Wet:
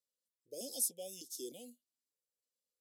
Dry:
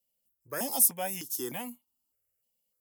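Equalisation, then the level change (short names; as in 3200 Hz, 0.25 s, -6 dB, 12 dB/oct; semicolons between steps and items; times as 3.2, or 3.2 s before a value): BPF 390–7600 Hz; elliptic band-stop 510–3600 Hz, stop band 60 dB; -3.5 dB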